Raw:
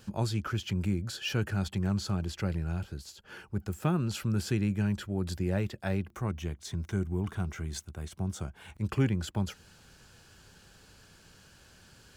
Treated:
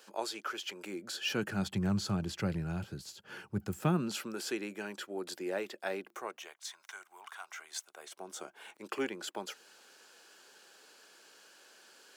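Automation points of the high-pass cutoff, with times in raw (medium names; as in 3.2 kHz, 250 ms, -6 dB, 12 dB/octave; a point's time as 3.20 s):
high-pass 24 dB/octave
0.80 s 400 Hz
1.73 s 110 Hz
3.73 s 110 Hz
4.37 s 330 Hz
6.12 s 330 Hz
6.66 s 840 Hz
7.42 s 840 Hz
8.39 s 340 Hz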